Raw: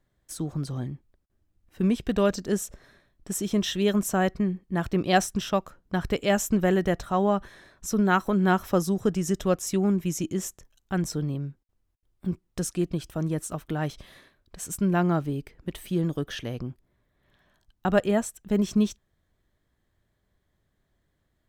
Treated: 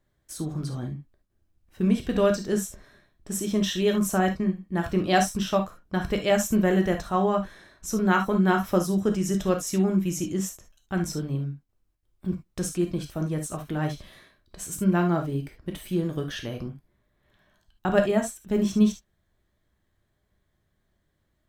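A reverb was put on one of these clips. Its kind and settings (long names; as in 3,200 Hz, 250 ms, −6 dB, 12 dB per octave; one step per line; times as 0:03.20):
reverb whose tail is shaped and stops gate 90 ms flat, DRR 3.5 dB
level −1 dB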